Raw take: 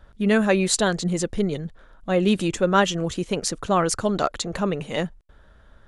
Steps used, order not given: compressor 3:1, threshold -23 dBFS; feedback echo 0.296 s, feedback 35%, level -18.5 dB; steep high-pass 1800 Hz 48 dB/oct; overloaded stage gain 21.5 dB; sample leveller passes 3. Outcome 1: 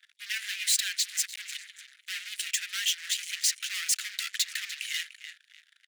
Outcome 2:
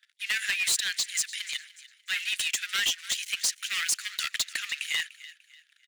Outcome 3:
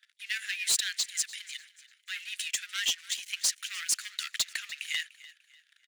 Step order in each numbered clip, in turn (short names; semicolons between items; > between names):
compressor > feedback echo > sample leveller > overloaded stage > steep high-pass; sample leveller > steep high-pass > compressor > feedback echo > overloaded stage; sample leveller > compressor > steep high-pass > overloaded stage > feedback echo